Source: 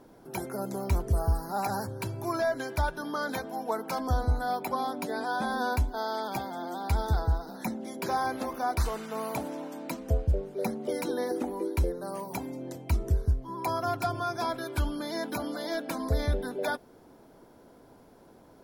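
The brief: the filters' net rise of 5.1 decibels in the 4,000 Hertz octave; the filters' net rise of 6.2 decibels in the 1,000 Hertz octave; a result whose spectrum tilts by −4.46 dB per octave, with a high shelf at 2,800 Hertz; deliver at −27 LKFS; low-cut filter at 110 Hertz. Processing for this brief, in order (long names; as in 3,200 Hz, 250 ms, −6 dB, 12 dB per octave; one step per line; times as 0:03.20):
high-pass filter 110 Hz
parametric band 1,000 Hz +7.5 dB
high-shelf EQ 2,800 Hz +3.5 dB
parametric band 4,000 Hz +3 dB
level +2 dB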